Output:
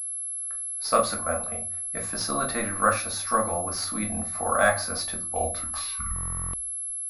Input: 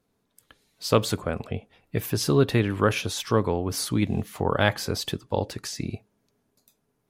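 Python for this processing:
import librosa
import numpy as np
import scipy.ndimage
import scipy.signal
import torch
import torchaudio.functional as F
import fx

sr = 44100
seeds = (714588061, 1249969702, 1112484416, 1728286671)

y = fx.tape_stop_end(x, sr, length_s=1.98)
y = fx.fixed_phaser(y, sr, hz=630.0, stages=8)
y = fx.vibrato(y, sr, rate_hz=0.35, depth_cents=6.8)
y = fx.graphic_eq_10(y, sr, hz=(125, 250, 500, 1000, 2000, 4000), db=(-7, -11, -4, 11, -5, 8))
y = fx.room_shoebox(y, sr, seeds[0], volume_m3=150.0, walls='furnished', distance_m=1.6)
y = fx.buffer_glitch(y, sr, at_s=(6.14,), block=1024, repeats=16)
y = fx.pwm(y, sr, carrier_hz=11000.0)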